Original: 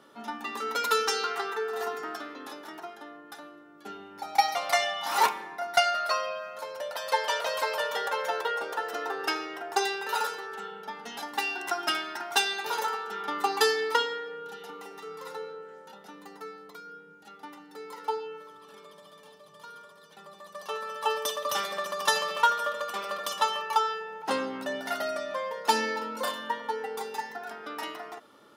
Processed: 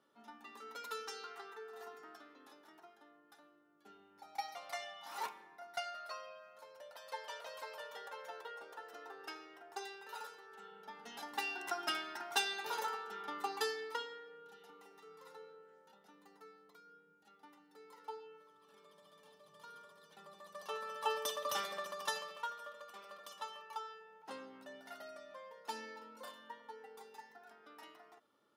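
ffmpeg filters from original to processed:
-af "volume=0.891,afade=t=in:st=10.44:d=0.91:silence=0.334965,afade=t=out:st=12.84:d=1.09:silence=0.446684,afade=t=in:st=18.54:d=1.22:silence=0.398107,afade=t=out:st=21.55:d=0.85:silence=0.266073"

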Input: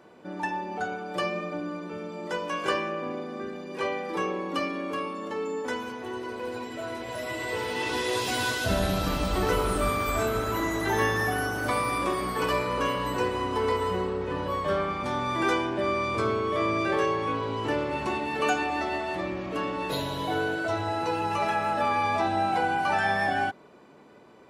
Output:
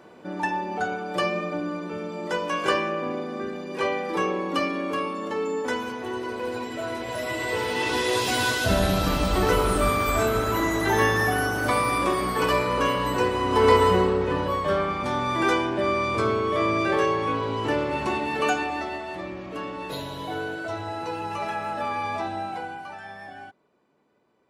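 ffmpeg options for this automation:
-af "volume=3.16,afade=t=in:st=13.43:d=0.3:silence=0.501187,afade=t=out:st=13.73:d=0.86:silence=0.446684,afade=t=out:st=18.31:d=0.68:silence=0.501187,afade=t=out:st=22.16:d=0.8:silence=0.251189"

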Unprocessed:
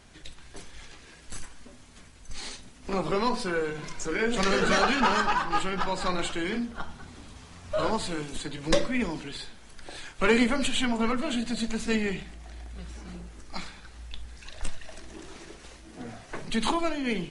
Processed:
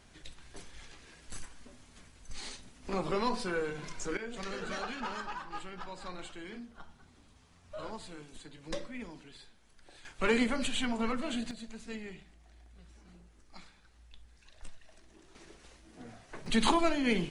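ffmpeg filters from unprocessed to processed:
-af "asetnsamples=n=441:p=0,asendcmd='4.17 volume volume -15dB;10.05 volume volume -6dB;11.51 volume volume -15.5dB;15.35 volume volume -9dB;16.46 volume volume 0dB',volume=0.562"

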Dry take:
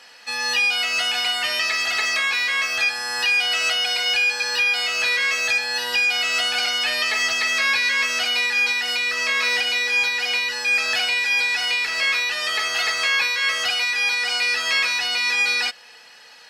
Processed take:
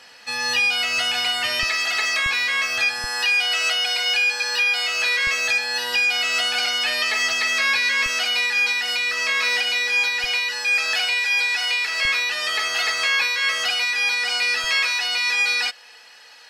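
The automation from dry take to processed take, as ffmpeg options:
-af "asetnsamples=n=441:p=0,asendcmd='1.63 equalizer g -5;2.26 equalizer g 3.5;3.04 equalizer g -8;5.27 equalizer g -1;8.06 equalizer g -8;10.24 equalizer g -14;12.05 equalizer g -3;14.64 equalizer g -11.5',equalizer=f=90:t=o:w=2.8:g=7"

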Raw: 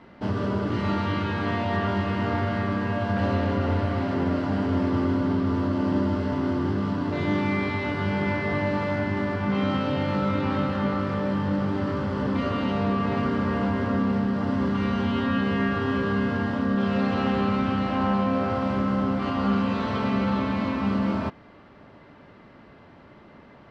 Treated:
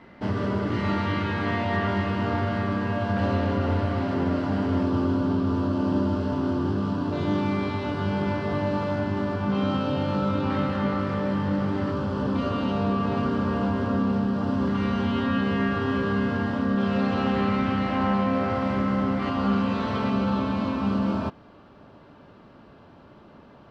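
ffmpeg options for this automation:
-af "asetnsamples=n=441:p=0,asendcmd='2.08 equalizer g -2.5;4.83 equalizer g -12;10.5 equalizer g -0.5;11.9 equalizer g -10.5;14.67 equalizer g -2.5;17.36 equalizer g 4.5;19.29 equalizer g -2.5;20.1 equalizer g -11',equalizer=f=2000:t=o:w=0.32:g=4"

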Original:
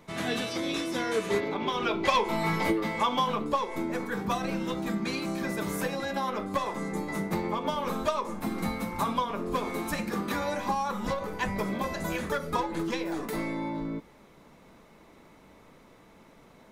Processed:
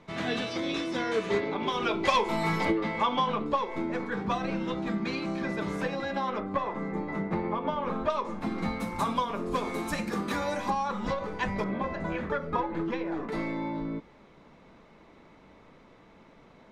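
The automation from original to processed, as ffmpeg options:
-af "asetnsamples=n=441:p=0,asendcmd='1.63 lowpass f 9800;2.65 lowpass f 4000;6.4 lowpass f 2200;8.1 lowpass f 4400;8.8 lowpass f 10000;10.7 lowpass f 5000;11.64 lowpass f 2200;13.32 lowpass f 4500',lowpass=4900"

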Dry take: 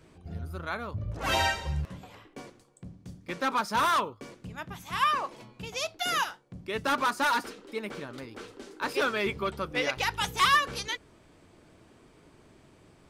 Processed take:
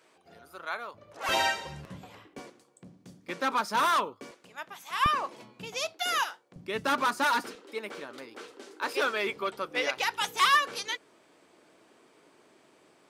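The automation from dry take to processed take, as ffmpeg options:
-af "asetnsamples=n=441:p=0,asendcmd='1.29 highpass f 240;1.86 highpass f 98;2.39 highpass f 220;4.31 highpass f 530;5.06 highpass f 180;5.93 highpass f 390;6.56 highpass f 130;7.55 highpass f 340',highpass=560"

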